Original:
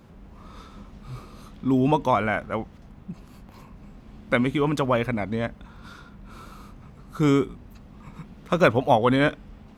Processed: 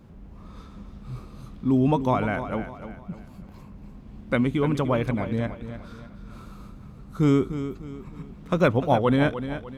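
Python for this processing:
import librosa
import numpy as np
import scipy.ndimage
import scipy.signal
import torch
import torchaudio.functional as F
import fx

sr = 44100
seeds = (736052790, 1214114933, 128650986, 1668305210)

p1 = fx.low_shelf(x, sr, hz=410.0, db=7.5)
p2 = p1 + fx.echo_feedback(p1, sr, ms=300, feedback_pct=38, wet_db=-11, dry=0)
y = p2 * 10.0 ** (-5.0 / 20.0)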